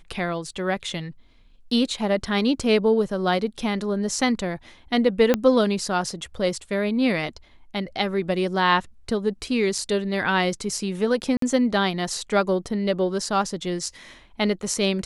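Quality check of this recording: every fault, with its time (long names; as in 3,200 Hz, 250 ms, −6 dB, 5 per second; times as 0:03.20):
0:05.34: click −6 dBFS
0:11.37–0:11.42: drop-out 53 ms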